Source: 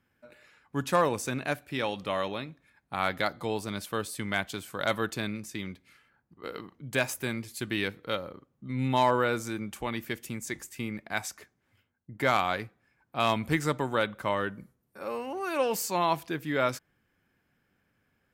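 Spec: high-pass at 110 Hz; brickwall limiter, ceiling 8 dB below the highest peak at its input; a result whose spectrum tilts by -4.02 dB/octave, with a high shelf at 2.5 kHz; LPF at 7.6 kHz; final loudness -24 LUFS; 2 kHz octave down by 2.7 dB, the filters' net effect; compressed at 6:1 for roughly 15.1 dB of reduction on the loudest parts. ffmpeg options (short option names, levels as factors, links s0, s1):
-af "highpass=110,lowpass=7600,equalizer=f=2000:t=o:g=-5.5,highshelf=f=2500:g=4,acompressor=threshold=0.0141:ratio=6,volume=9.44,alimiter=limit=0.316:level=0:latency=1"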